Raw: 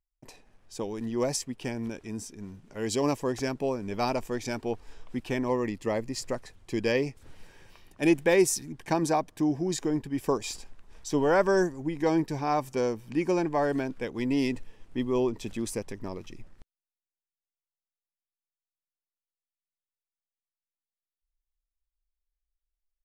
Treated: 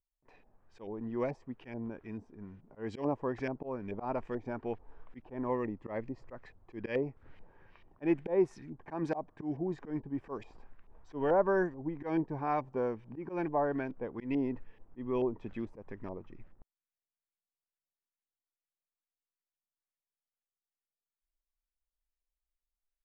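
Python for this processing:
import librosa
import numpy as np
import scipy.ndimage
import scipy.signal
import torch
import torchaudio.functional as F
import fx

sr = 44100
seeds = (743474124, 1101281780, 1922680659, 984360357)

y = fx.filter_lfo_lowpass(x, sr, shape='saw_up', hz=2.3, low_hz=690.0, high_hz=2500.0, q=1.4)
y = fx.auto_swell(y, sr, attack_ms=114.0)
y = y * 10.0 ** (-6.0 / 20.0)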